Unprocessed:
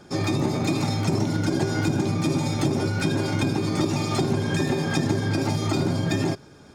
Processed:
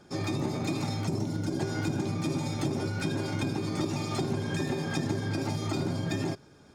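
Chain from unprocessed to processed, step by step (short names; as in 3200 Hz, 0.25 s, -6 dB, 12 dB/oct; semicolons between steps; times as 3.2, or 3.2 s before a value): 1.07–1.59 bell 1900 Hz -6 dB 2.5 oct; gain -7 dB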